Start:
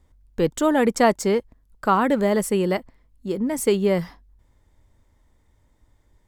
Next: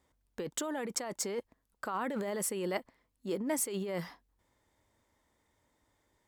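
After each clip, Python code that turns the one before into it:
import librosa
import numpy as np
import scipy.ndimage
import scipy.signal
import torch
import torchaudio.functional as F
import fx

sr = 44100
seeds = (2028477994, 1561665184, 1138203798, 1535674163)

y = fx.over_compress(x, sr, threshold_db=-24.0, ratio=-1.0)
y = fx.highpass(y, sr, hz=400.0, slope=6)
y = F.gain(torch.from_numpy(y), -7.5).numpy()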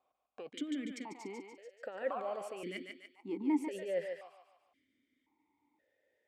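y = fx.echo_thinned(x, sr, ms=145, feedback_pct=50, hz=510.0, wet_db=-4)
y = fx.vowel_held(y, sr, hz=1.9)
y = F.gain(torch.from_numpy(y), 7.5).numpy()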